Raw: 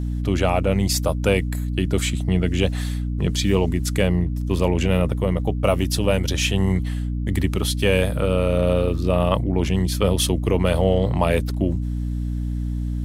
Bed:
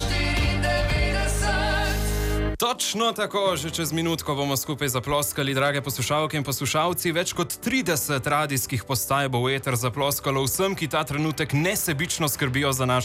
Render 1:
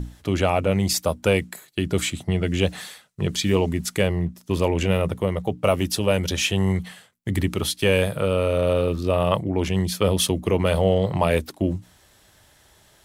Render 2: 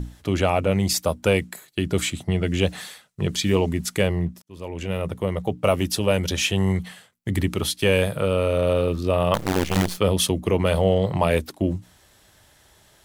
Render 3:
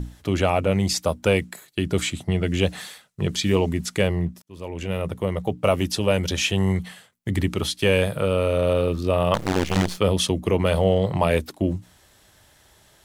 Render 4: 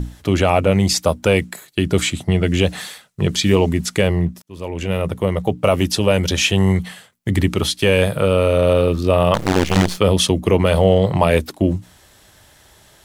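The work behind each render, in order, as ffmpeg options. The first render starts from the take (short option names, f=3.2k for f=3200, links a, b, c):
-af "bandreject=f=60:t=h:w=6,bandreject=f=120:t=h:w=6,bandreject=f=180:t=h:w=6,bandreject=f=240:t=h:w=6,bandreject=f=300:t=h:w=6"
-filter_complex "[0:a]asettb=1/sr,asplit=3[a][b][c];[a]atrim=end=9.344[d];[b]atrim=start=9.34:end=9.98,asetpts=PTS-STARTPTS,afade=t=in:d=0.004:c=qsin,afade=t=out:st=0.636:d=0.004:c=qsin,acrusher=bits=4:dc=4:mix=0:aa=0.000001[e];[c]atrim=start=9.976[f];[d][e]acrossfade=d=0.004:c1=hsin:c2=qsin[g];[g][f]acrossfade=d=0.004:c1=qsin:c2=hsin,asplit=2[h][i];[h]atrim=end=4.42,asetpts=PTS-STARTPTS,afade=t=out:st=4.416:d=0.004:c=hsin[j];[i]atrim=start=4.42,asetpts=PTS-STARTPTS,afade=t=in:d=1.01[k];[j][k]concat=n=2:v=0:a=1"
-filter_complex "[0:a]acrossover=split=8900[a][b];[b]acompressor=threshold=-43dB:ratio=4:attack=1:release=60[c];[a][c]amix=inputs=2:normalize=0"
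-af "volume=6dB,alimiter=limit=-2dB:level=0:latency=1"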